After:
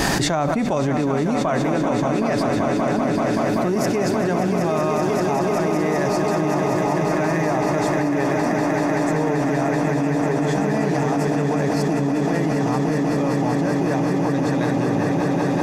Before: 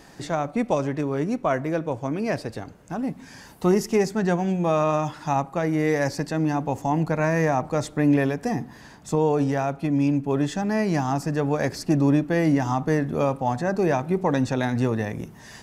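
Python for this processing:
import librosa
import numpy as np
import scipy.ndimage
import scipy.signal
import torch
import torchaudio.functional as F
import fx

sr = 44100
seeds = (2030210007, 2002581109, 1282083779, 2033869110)

y = fx.notch(x, sr, hz=490.0, q=12.0)
y = fx.echo_swell(y, sr, ms=192, loudest=8, wet_db=-7.5)
y = fx.env_flatten(y, sr, amount_pct=100)
y = y * 10.0 ** (-7.0 / 20.0)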